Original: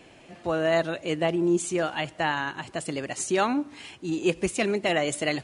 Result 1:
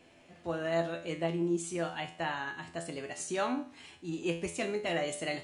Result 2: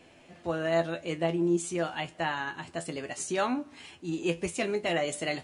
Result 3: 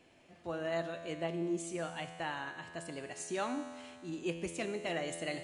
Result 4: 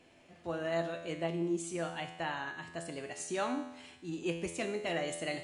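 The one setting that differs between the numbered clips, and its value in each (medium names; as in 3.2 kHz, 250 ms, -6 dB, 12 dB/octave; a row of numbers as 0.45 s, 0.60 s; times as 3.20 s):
feedback comb, decay: 0.44 s, 0.15 s, 2.1 s, 0.93 s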